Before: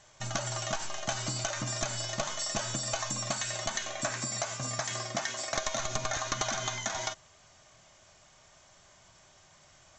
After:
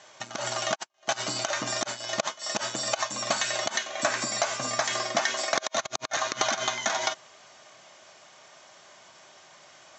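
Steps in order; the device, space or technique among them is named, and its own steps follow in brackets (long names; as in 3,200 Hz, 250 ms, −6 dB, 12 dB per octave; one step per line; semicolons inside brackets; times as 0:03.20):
public-address speaker with an overloaded transformer (saturating transformer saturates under 350 Hz; band-pass filter 280–5,800 Hz)
level +8.5 dB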